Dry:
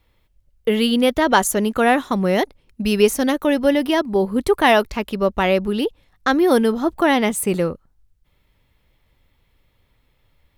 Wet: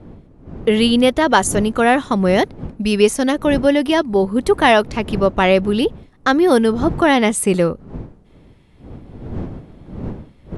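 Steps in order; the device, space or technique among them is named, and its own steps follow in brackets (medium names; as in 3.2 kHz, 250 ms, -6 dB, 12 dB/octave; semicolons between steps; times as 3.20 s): smartphone video outdoors (wind noise 230 Hz -35 dBFS; level rider gain up to 7 dB; AAC 96 kbps 24 kHz)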